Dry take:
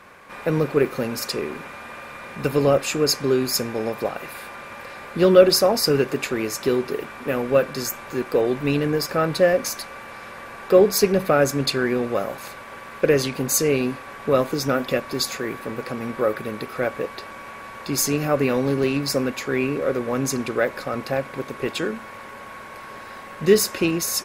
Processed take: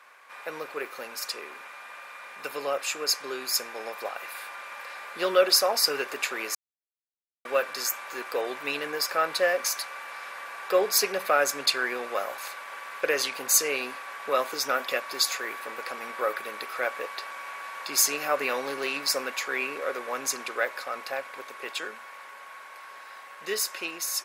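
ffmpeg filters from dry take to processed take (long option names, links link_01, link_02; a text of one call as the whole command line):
ffmpeg -i in.wav -filter_complex "[0:a]asplit=3[link_01][link_02][link_03];[link_01]atrim=end=6.55,asetpts=PTS-STARTPTS,afade=type=out:start_time=6.546:duration=0.004:curve=hsin[link_04];[link_02]atrim=start=6.55:end=7.45,asetpts=PTS-STARTPTS,volume=0[link_05];[link_03]atrim=start=7.45,asetpts=PTS-STARTPTS,afade=type=in:duration=0.004:curve=hsin[link_06];[link_04][link_05][link_06]concat=n=3:v=0:a=1,highpass=820,dynaudnorm=framelen=250:gausssize=31:maxgain=8dB,volume=-5dB" out.wav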